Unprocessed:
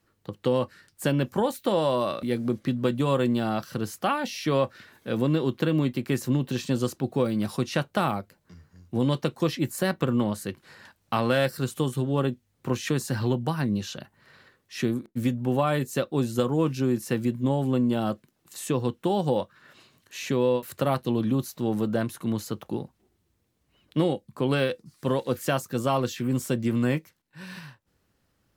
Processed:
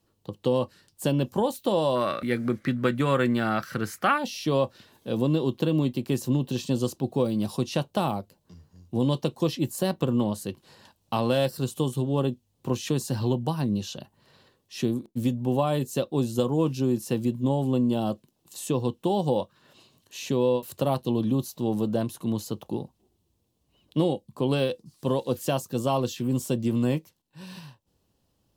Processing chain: band shelf 1700 Hz -9 dB 1.1 oct, from 1.95 s +8 dB, from 4.17 s -10 dB

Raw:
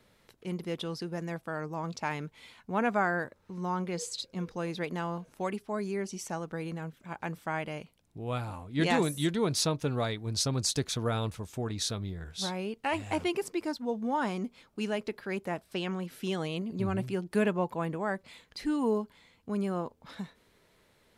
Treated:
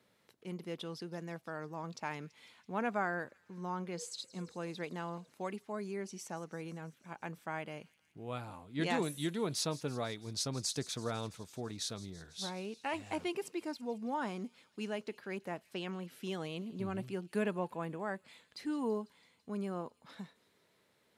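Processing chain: HPF 130 Hz 12 dB/oct; thin delay 0.166 s, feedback 72%, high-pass 3700 Hz, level -16 dB; gain -6.5 dB

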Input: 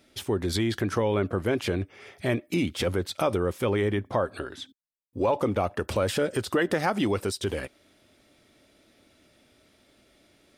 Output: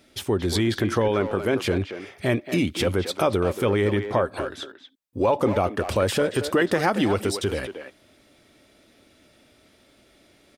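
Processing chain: 1.08–1.53 HPF 170 Hz 6 dB/oct; speakerphone echo 0.23 s, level -8 dB; gain +3.5 dB

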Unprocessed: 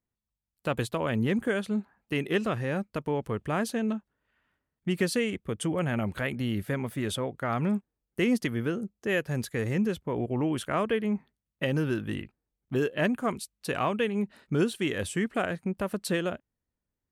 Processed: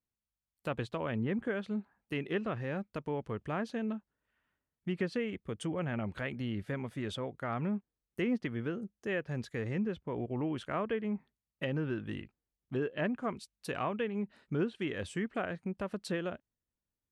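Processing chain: treble ducked by the level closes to 2300 Hz, closed at -22.5 dBFS; gain -6.5 dB

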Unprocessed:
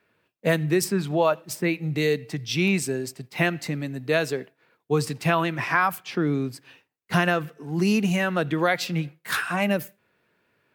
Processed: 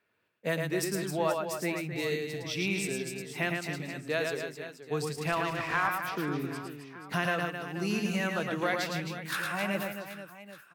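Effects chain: low shelf 420 Hz -4.5 dB; reverse bouncing-ball echo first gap 0.11 s, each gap 1.4×, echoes 5; 5.32–5.88 running maximum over 3 samples; gain -7.5 dB

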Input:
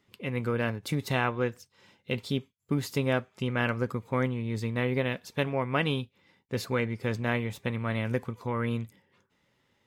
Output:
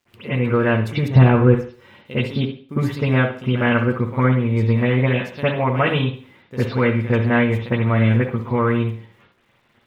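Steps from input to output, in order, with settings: 1.08–1.49 tilt -3.5 dB/oct; in parallel at -2 dB: compressor, threshold -35 dBFS, peak gain reduction 17.5 dB; on the sum: bit-crush 10-bit; reverb, pre-delay 54 ms, DRR -15.5 dB; gain -8 dB

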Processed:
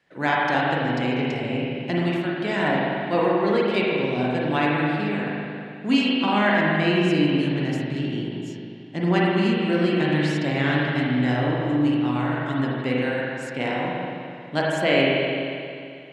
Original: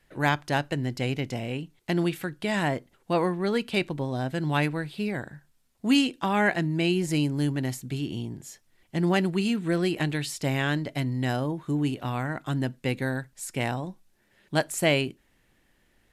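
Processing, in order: BPF 160–5100 Hz; spring tank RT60 2.5 s, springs 40/44 ms, chirp 40 ms, DRR -5 dB; ending taper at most 150 dB/s

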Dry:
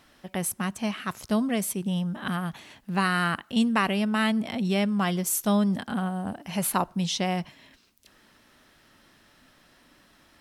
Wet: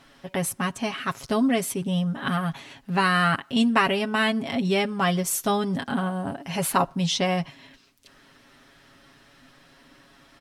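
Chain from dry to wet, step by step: high shelf 11000 Hz -11 dB; comb 7.3 ms, depth 67%; gain +3 dB

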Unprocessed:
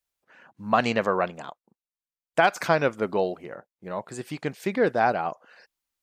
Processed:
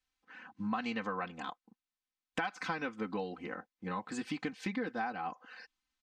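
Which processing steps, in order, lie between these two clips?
LPF 5100 Hz 12 dB/oct; bell 570 Hz -13.5 dB 0.5 oct; comb 3.9 ms, depth 96%; compressor 6:1, threshold -34 dBFS, peak gain reduction 18.5 dB

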